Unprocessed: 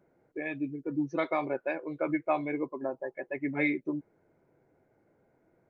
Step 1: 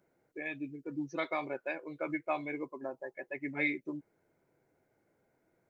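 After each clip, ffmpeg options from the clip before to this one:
ffmpeg -i in.wav -af "highshelf=frequency=2000:gain=11,volume=-7dB" out.wav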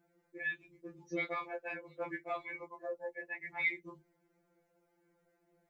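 ffmpeg -i in.wav -af "afftfilt=real='re*2.83*eq(mod(b,8),0)':imag='im*2.83*eq(mod(b,8),0)':win_size=2048:overlap=0.75,volume=1.5dB" out.wav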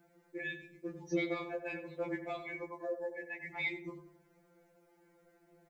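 ffmpeg -i in.wav -filter_complex "[0:a]acrossover=split=490|3000[link_01][link_02][link_03];[link_02]acompressor=threshold=-55dB:ratio=4[link_04];[link_01][link_04][link_03]amix=inputs=3:normalize=0,asplit=2[link_05][link_06];[link_06]adelay=91,lowpass=frequency=1500:poles=1,volume=-8.5dB,asplit=2[link_07][link_08];[link_08]adelay=91,lowpass=frequency=1500:poles=1,volume=0.47,asplit=2[link_09][link_10];[link_10]adelay=91,lowpass=frequency=1500:poles=1,volume=0.47,asplit=2[link_11][link_12];[link_12]adelay=91,lowpass=frequency=1500:poles=1,volume=0.47,asplit=2[link_13][link_14];[link_14]adelay=91,lowpass=frequency=1500:poles=1,volume=0.47[link_15];[link_05][link_07][link_09][link_11][link_13][link_15]amix=inputs=6:normalize=0,volume=7dB" out.wav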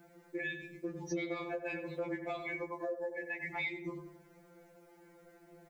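ffmpeg -i in.wav -af "acompressor=threshold=-44dB:ratio=3,volume=7dB" out.wav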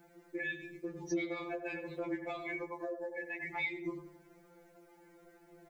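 ffmpeg -i in.wav -af "flanger=delay=2.2:depth=1.4:regen=55:speed=1.1:shape=triangular,volume=3.5dB" out.wav

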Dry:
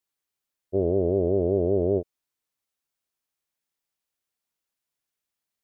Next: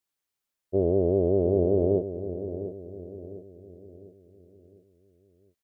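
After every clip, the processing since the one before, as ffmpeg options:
ffmpeg -i in.wav -filter_complex "[0:a]asplit=2[link_01][link_02];[link_02]adelay=703,lowpass=frequency=810:poles=1,volume=-10dB,asplit=2[link_03][link_04];[link_04]adelay=703,lowpass=frequency=810:poles=1,volume=0.47,asplit=2[link_05][link_06];[link_06]adelay=703,lowpass=frequency=810:poles=1,volume=0.47,asplit=2[link_07][link_08];[link_08]adelay=703,lowpass=frequency=810:poles=1,volume=0.47,asplit=2[link_09][link_10];[link_10]adelay=703,lowpass=frequency=810:poles=1,volume=0.47[link_11];[link_01][link_03][link_05][link_07][link_09][link_11]amix=inputs=6:normalize=0" out.wav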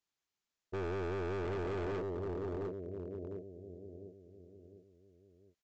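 ffmpeg -i in.wav -af "bandreject=frequency=550:width=12,alimiter=limit=-17dB:level=0:latency=1:release=82,aresample=16000,volume=33.5dB,asoftclip=hard,volume=-33.5dB,aresample=44100,volume=-2dB" out.wav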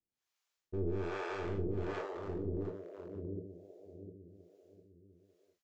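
ffmpeg -i in.wav -filter_complex "[0:a]acrossover=split=460[link_01][link_02];[link_01]aeval=exprs='val(0)*(1-1/2+1/2*cos(2*PI*1.2*n/s))':channel_layout=same[link_03];[link_02]aeval=exprs='val(0)*(1-1/2-1/2*cos(2*PI*1.2*n/s))':channel_layout=same[link_04];[link_03][link_04]amix=inputs=2:normalize=0,aecho=1:1:24|41:0.501|0.501,volume=3.5dB" out.wav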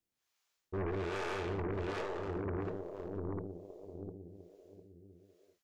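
ffmpeg -i in.wav -af "aeval=exprs='0.0473*(cos(1*acos(clip(val(0)/0.0473,-1,1)))-cos(1*PI/2))+0.015*(cos(5*acos(clip(val(0)/0.0473,-1,1)))-cos(5*PI/2))+0.0119*(cos(6*acos(clip(val(0)/0.0473,-1,1)))-cos(6*PI/2))+0.0168*(cos(8*acos(clip(val(0)/0.0473,-1,1)))-cos(8*PI/2))':channel_layout=same,volume=-4dB" out.wav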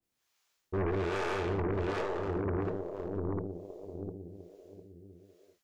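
ffmpeg -i in.wav -af "adynamicequalizer=threshold=0.00251:dfrequency=1800:dqfactor=0.7:tfrequency=1800:tqfactor=0.7:attack=5:release=100:ratio=0.375:range=1.5:mode=cutabove:tftype=highshelf,volume=5dB" out.wav

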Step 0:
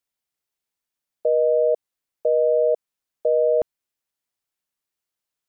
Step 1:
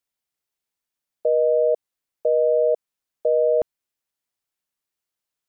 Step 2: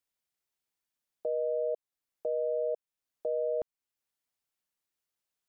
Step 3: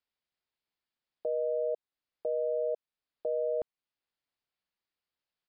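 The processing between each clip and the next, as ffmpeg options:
ffmpeg -i in.wav -af anull out.wav
ffmpeg -i in.wav -af "alimiter=limit=-21.5dB:level=0:latency=1:release=448,volume=-3dB" out.wav
ffmpeg -i in.wav -af "aresample=11025,aresample=44100" out.wav

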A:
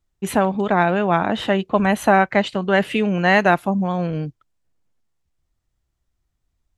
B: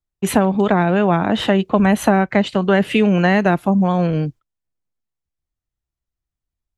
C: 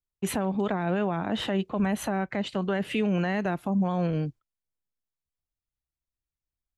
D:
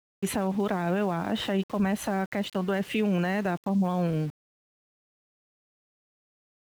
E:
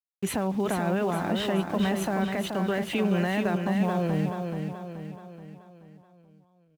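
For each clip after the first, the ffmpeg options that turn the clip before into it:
ffmpeg -i in.wav -filter_complex "[0:a]agate=range=-17dB:threshold=-41dB:ratio=16:detection=peak,acrossover=split=390[link_01][link_02];[link_02]acompressor=threshold=-21dB:ratio=10[link_03];[link_01][link_03]amix=inputs=2:normalize=0,volume=5.5dB" out.wav
ffmpeg -i in.wav -af "alimiter=limit=-9.5dB:level=0:latency=1:release=58,volume=-8.5dB" out.wav
ffmpeg -i in.wav -af "aeval=exprs='val(0)*gte(abs(val(0)),0.00794)':channel_layout=same" out.wav
ffmpeg -i in.wav -af "aecho=1:1:429|858|1287|1716|2145|2574:0.531|0.26|0.127|0.0625|0.0306|0.015" out.wav

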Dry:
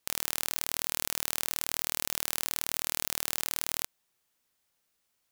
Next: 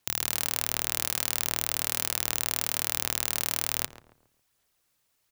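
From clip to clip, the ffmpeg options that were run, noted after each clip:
ffmpeg -i in.wav -filter_complex "[0:a]aphaser=in_gain=1:out_gain=1:delay=3:decay=0.32:speed=1.3:type=sinusoidal,afreqshift=-150,asplit=2[link_01][link_02];[link_02]adelay=137,lowpass=frequency=1200:poles=1,volume=-11dB,asplit=2[link_03][link_04];[link_04]adelay=137,lowpass=frequency=1200:poles=1,volume=0.4,asplit=2[link_05][link_06];[link_06]adelay=137,lowpass=frequency=1200:poles=1,volume=0.4,asplit=2[link_07][link_08];[link_08]adelay=137,lowpass=frequency=1200:poles=1,volume=0.4[link_09];[link_01][link_03][link_05][link_07][link_09]amix=inputs=5:normalize=0,volume=3dB" out.wav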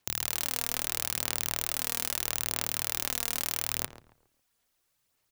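ffmpeg -i in.wav -af "aphaser=in_gain=1:out_gain=1:delay=4.3:decay=0.35:speed=0.77:type=sinusoidal,volume=-3dB" out.wav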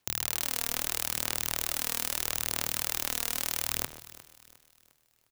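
ffmpeg -i in.wav -af "aecho=1:1:355|710|1065|1420:0.133|0.0573|0.0247|0.0106" out.wav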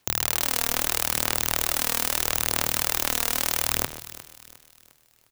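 ffmpeg -i in.wav -af "volume=14.5dB,asoftclip=hard,volume=-14.5dB,volume=8.5dB" out.wav

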